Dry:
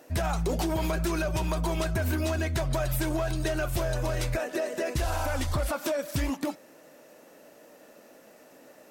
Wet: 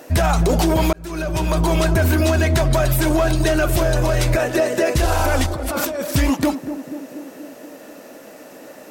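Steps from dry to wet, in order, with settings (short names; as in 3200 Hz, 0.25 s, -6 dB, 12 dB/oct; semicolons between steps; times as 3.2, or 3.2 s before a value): 5.46–6.02 negative-ratio compressor -37 dBFS, ratio -1; narrowing echo 0.24 s, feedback 69%, band-pass 330 Hz, level -9 dB; 0.93–1.76 fade in; maximiser +20.5 dB; gain -8 dB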